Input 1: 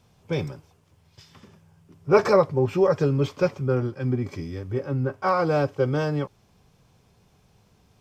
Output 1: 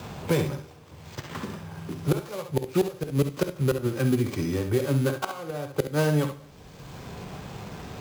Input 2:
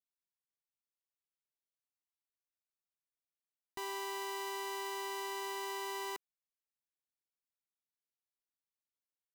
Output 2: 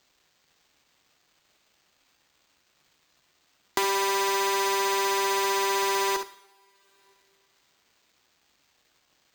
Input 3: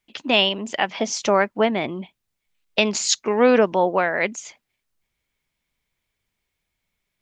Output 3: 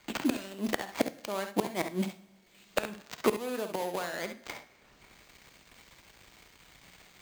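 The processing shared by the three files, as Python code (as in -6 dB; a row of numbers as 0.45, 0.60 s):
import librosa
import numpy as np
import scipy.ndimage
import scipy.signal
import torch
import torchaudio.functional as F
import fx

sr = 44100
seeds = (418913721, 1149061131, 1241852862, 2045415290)

y = fx.dead_time(x, sr, dead_ms=0.16)
y = fx.highpass(y, sr, hz=42.0, slope=6)
y = fx.high_shelf(y, sr, hz=4900.0, db=10.0)
y = fx.gate_flip(y, sr, shuts_db=-12.0, range_db=-24)
y = fx.room_early_taps(y, sr, ms=(52, 67), db=(-12.5, -10.0))
y = np.repeat(scipy.signal.resample_poly(y, 1, 4), 4)[:len(y)]
y = fx.rev_double_slope(y, sr, seeds[0], early_s=0.6, late_s=2.4, knee_db=-28, drr_db=14.0)
y = fx.band_squash(y, sr, depth_pct=70)
y = y * 10.0 ** (-9 / 20.0) / np.max(np.abs(y))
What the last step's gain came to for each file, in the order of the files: +3.0, +16.5, +4.0 dB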